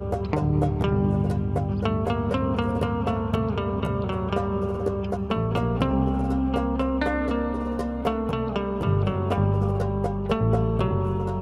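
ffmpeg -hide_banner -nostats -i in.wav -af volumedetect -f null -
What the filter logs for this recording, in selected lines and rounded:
mean_volume: -24.1 dB
max_volume: -8.0 dB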